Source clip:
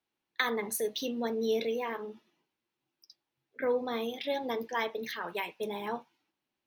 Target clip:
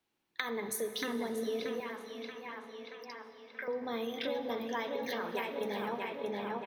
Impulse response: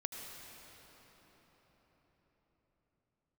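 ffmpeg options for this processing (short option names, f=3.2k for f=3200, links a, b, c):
-filter_complex "[0:a]asplit=2[a][b];[b]adelay=630,lowpass=f=3.8k:p=1,volume=-4.5dB,asplit=2[c][d];[d]adelay=630,lowpass=f=3.8k:p=1,volume=0.48,asplit=2[e][f];[f]adelay=630,lowpass=f=3.8k:p=1,volume=0.48,asplit=2[g][h];[h]adelay=630,lowpass=f=3.8k:p=1,volume=0.48,asplit=2[i][j];[j]adelay=630,lowpass=f=3.8k:p=1,volume=0.48,asplit=2[k][l];[l]adelay=630,lowpass=f=3.8k:p=1,volume=0.48[m];[a][c][e][g][i][k][m]amix=inputs=7:normalize=0,acompressor=threshold=-38dB:ratio=6,asettb=1/sr,asplit=3[n][o][p];[n]atrim=end=1.804[q];[o]atrim=start=1.8:end=3.68,asetpts=PTS-STARTPTS,afade=t=in:d=0.004:c=qsin,afade=t=out:st=1.876:d=0.004:c=qsin,highpass=960[r];[p]atrim=start=3.676[s];[q][r]acrossfade=d=0.004:c1=hsin:c2=qsin[t];[t][s]acrossfade=d=0.004:c1=qsin:c2=hsin,asplit=2[u][v];[1:a]atrim=start_sample=2205,lowshelf=f=430:g=5.5[w];[v][w]afir=irnorm=-1:irlink=0,volume=-3dB[x];[u][x]amix=inputs=2:normalize=0"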